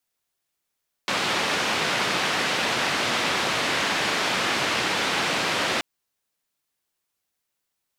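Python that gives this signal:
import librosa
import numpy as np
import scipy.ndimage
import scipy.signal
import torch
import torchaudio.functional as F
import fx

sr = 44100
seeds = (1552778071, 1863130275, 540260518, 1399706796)

y = fx.band_noise(sr, seeds[0], length_s=4.73, low_hz=150.0, high_hz=3100.0, level_db=-24.5)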